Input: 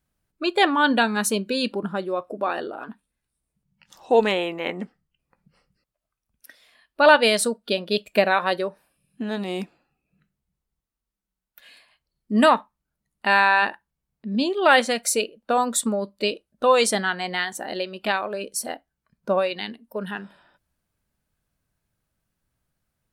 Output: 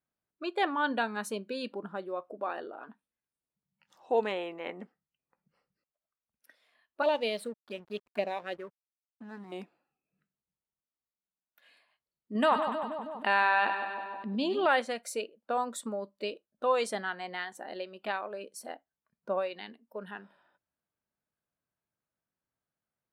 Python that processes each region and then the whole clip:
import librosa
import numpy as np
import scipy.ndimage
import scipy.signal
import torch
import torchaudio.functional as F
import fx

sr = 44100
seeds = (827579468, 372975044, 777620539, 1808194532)

y = fx.chain(x, sr, fx.env_phaser(low_hz=300.0, high_hz=1400.0, full_db=-15.5),
    fx.backlash(play_db=-35.5), at=(7.02, 9.52))
y = fx.chain(y, sr, fx.peak_eq(hz=3100.0, db=4.5, octaves=0.36),
    fx.echo_split(split_hz=900.0, low_ms=159, high_ms=98, feedback_pct=52, wet_db=-13.0),
    fx.env_flatten(amount_pct=50), at=(12.35, 14.66))
y = fx.highpass(y, sr, hz=420.0, slope=6)
y = fx.high_shelf(y, sr, hz=2500.0, db=-11.5)
y = F.gain(torch.from_numpy(y), -7.0).numpy()